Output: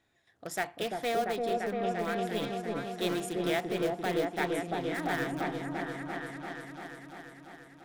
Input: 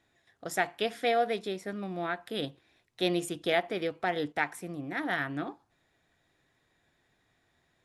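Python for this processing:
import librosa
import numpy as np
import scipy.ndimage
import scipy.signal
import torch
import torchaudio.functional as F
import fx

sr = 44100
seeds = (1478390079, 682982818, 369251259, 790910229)

p1 = (np.mod(10.0 ** (26.5 / 20.0) * x + 1.0, 2.0) - 1.0) / 10.0 ** (26.5 / 20.0)
p2 = x + F.gain(torch.from_numpy(p1), -9.0).numpy()
p3 = fx.echo_opening(p2, sr, ms=343, hz=750, octaves=1, feedback_pct=70, wet_db=0)
y = F.gain(torch.from_numpy(p3), -4.5).numpy()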